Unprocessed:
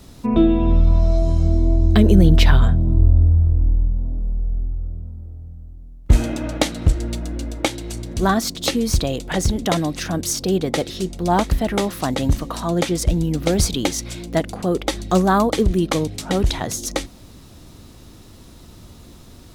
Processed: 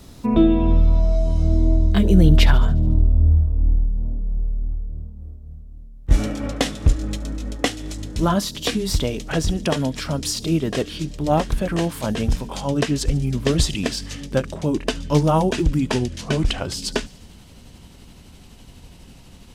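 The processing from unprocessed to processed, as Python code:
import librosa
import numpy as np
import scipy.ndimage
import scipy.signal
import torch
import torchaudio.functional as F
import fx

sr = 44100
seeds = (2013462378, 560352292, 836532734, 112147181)

y = fx.pitch_glide(x, sr, semitones=-5.0, runs='starting unshifted')
y = fx.echo_wet_highpass(y, sr, ms=72, feedback_pct=64, hz=4500.0, wet_db=-18.0)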